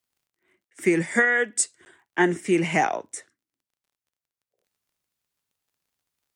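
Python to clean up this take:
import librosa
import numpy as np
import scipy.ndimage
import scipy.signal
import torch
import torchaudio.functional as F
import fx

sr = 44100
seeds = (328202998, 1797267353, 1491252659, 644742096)

y = fx.fix_declick_ar(x, sr, threshold=6.5)
y = fx.fix_interpolate(y, sr, at_s=(0.7, 1.85), length_ms=10.0)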